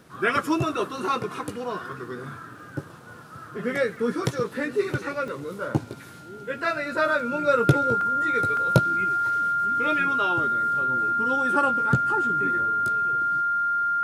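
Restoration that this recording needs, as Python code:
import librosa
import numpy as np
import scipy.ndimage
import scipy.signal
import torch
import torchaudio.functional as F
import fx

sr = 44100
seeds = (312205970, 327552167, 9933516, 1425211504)

y = fx.fix_declick_ar(x, sr, threshold=6.5)
y = fx.notch(y, sr, hz=1400.0, q=30.0)
y = fx.fix_interpolate(y, sr, at_s=(5.28, 8.01, 8.57), length_ms=2.1)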